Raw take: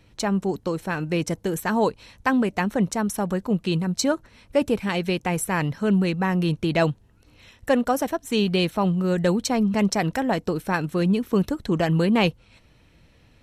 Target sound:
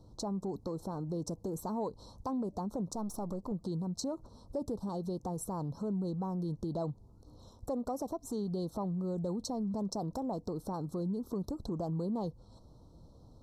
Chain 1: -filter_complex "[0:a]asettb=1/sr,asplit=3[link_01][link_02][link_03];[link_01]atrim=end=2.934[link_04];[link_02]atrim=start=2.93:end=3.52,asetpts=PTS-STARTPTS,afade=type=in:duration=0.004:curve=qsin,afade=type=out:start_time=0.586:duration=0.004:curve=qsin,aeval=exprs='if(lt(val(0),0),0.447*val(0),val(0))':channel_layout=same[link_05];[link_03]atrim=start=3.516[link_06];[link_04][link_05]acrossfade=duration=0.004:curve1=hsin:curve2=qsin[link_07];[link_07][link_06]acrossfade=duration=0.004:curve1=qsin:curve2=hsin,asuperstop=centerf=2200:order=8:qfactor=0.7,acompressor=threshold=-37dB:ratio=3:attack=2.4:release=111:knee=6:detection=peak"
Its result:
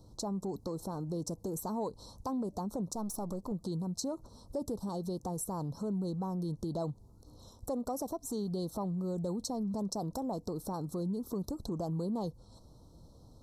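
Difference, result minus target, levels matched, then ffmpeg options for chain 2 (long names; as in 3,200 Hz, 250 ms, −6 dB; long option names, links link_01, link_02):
8,000 Hz band +4.0 dB
-filter_complex "[0:a]asettb=1/sr,asplit=3[link_01][link_02][link_03];[link_01]atrim=end=2.934[link_04];[link_02]atrim=start=2.93:end=3.52,asetpts=PTS-STARTPTS,afade=type=in:duration=0.004:curve=qsin,afade=type=out:start_time=0.586:duration=0.004:curve=qsin,aeval=exprs='if(lt(val(0),0),0.447*val(0),val(0))':channel_layout=same[link_05];[link_03]atrim=start=3.516[link_06];[link_04][link_05]acrossfade=duration=0.004:curve1=hsin:curve2=qsin[link_07];[link_07][link_06]acrossfade=duration=0.004:curve1=qsin:curve2=hsin,asuperstop=centerf=2200:order=8:qfactor=0.7,highshelf=frequency=5800:gain=-11.5,acompressor=threshold=-37dB:ratio=3:attack=2.4:release=111:knee=6:detection=peak"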